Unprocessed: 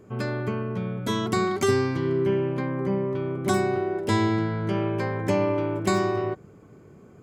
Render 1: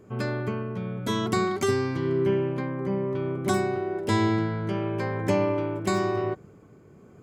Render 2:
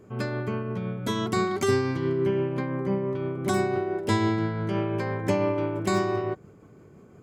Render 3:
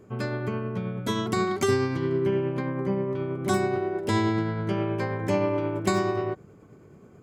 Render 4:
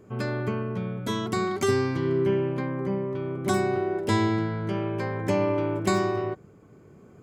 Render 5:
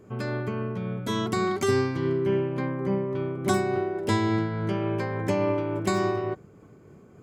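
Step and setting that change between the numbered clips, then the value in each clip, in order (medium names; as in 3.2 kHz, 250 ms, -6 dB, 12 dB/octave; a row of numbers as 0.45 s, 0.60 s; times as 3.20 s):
tremolo, rate: 0.99 Hz, 5.9 Hz, 9.4 Hz, 0.57 Hz, 3.5 Hz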